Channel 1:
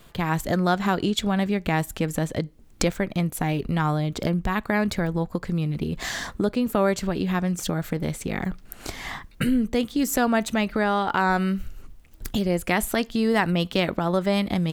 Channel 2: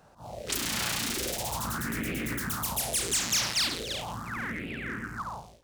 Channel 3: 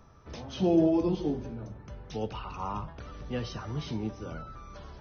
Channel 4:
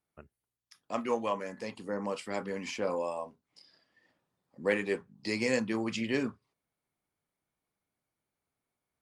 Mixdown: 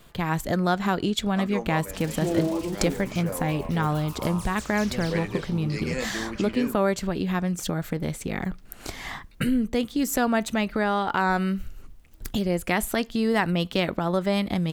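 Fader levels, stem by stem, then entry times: -1.5, -14.5, -2.5, -2.0 dB; 0.00, 1.45, 1.60, 0.45 s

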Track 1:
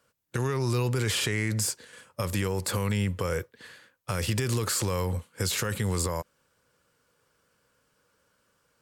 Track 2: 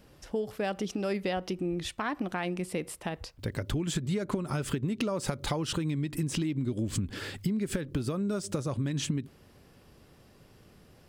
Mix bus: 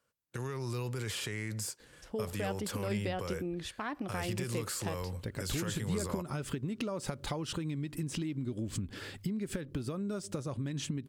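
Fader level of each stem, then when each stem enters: -10.0, -5.5 dB; 0.00, 1.80 s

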